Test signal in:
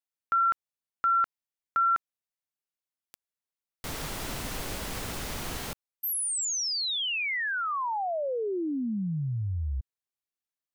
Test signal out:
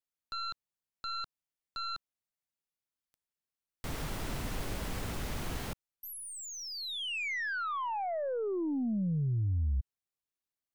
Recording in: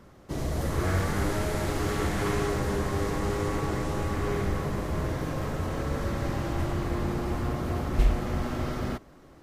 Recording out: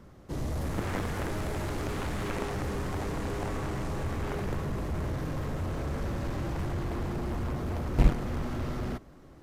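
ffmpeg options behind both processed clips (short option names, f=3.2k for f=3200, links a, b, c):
-filter_complex "[0:a]aeval=exprs='0.316*(cos(1*acos(clip(val(0)/0.316,-1,1)))-cos(1*PI/2))+0.02*(cos(4*acos(clip(val(0)/0.316,-1,1)))-cos(4*PI/2))+0.0282*(cos(6*acos(clip(val(0)/0.316,-1,1)))-cos(6*PI/2))+0.112*(cos(7*acos(clip(val(0)/0.316,-1,1)))-cos(7*PI/2))+0.00708*(cos(8*acos(clip(val(0)/0.316,-1,1)))-cos(8*PI/2))':c=same,acrossover=split=3100[a][b];[b]acompressor=threshold=-37dB:ratio=4:attack=1:release=60[c];[a][c]amix=inputs=2:normalize=0,lowshelf=f=270:g=6,volume=-6.5dB"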